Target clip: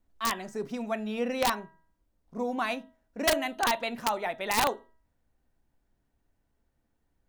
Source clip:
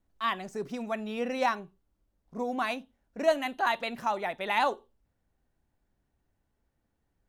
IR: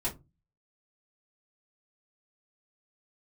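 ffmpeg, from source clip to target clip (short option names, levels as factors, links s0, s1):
-filter_complex "[0:a]bandreject=f=322.3:t=h:w=4,bandreject=f=644.6:t=h:w=4,bandreject=f=966.9:t=h:w=4,bandreject=f=1289.2:t=h:w=4,bandreject=f=1611.5:t=h:w=4,bandreject=f=1933.8:t=h:w=4,asplit=2[s0][s1];[1:a]atrim=start_sample=2205,highshelf=f=3500:g=-5.5[s2];[s1][s2]afir=irnorm=-1:irlink=0,volume=0.126[s3];[s0][s3]amix=inputs=2:normalize=0,aeval=exprs='(mod(7.08*val(0)+1,2)-1)/7.08':c=same"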